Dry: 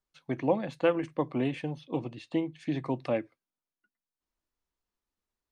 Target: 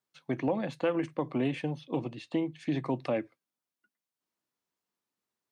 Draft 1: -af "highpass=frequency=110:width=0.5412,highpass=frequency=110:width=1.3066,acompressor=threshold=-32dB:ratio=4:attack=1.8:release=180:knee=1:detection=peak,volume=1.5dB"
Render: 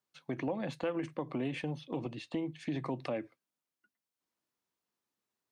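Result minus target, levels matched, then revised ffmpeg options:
downward compressor: peak gain reduction +6 dB
-af "highpass=frequency=110:width=0.5412,highpass=frequency=110:width=1.3066,acompressor=threshold=-24dB:ratio=4:attack=1.8:release=180:knee=1:detection=peak,volume=1.5dB"

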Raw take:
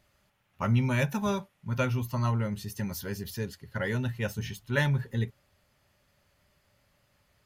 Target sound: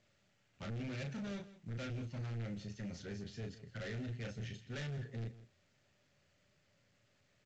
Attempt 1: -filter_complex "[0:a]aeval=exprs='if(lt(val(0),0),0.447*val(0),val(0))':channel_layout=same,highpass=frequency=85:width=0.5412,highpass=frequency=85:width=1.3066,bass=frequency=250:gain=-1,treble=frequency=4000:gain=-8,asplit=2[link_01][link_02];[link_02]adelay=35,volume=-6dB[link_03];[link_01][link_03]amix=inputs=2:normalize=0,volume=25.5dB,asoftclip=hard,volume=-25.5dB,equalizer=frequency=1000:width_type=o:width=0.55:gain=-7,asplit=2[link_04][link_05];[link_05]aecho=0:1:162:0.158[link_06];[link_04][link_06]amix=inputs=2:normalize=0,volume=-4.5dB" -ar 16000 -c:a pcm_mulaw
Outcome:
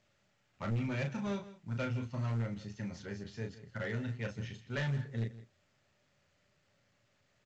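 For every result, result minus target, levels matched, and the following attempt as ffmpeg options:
gain into a clipping stage and back: distortion −8 dB; 1,000 Hz band +3.5 dB
-filter_complex "[0:a]aeval=exprs='if(lt(val(0),0),0.447*val(0),val(0))':channel_layout=same,highpass=frequency=85:width=0.5412,highpass=frequency=85:width=1.3066,bass=frequency=250:gain=-1,treble=frequency=4000:gain=-8,asplit=2[link_01][link_02];[link_02]adelay=35,volume=-6dB[link_03];[link_01][link_03]amix=inputs=2:normalize=0,volume=35dB,asoftclip=hard,volume=-35dB,equalizer=frequency=1000:width_type=o:width=0.55:gain=-7,asplit=2[link_04][link_05];[link_05]aecho=0:1:162:0.158[link_06];[link_04][link_06]amix=inputs=2:normalize=0,volume=-4.5dB" -ar 16000 -c:a pcm_mulaw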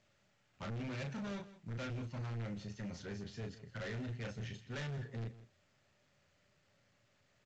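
1,000 Hz band +4.0 dB
-filter_complex "[0:a]aeval=exprs='if(lt(val(0),0),0.447*val(0),val(0))':channel_layout=same,highpass=frequency=85:width=0.5412,highpass=frequency=85:width=1.3066,bass=frequency=250:gain=-1,treble=frequency=4000:gain=-8,asplit=2[link_01][link_02];[link_02]adelay=35,volume=-6dB[link_03];[link_01][link_03]amix=inputs=2:normalize=0,volume=35dB,asoftclip=hard,volume=-35dB,equalizer=frequency=1000:width_type=o:width=0.55:gain=-16.5,asplit=2[link_04][link_05];[link_05]aecho=0:1:162:0.158[link_06];[link_04][link_06]amix=inputs=2:normalize=0,volume=-4.5dB" -ar 16000 -c:a pcm_mulaw

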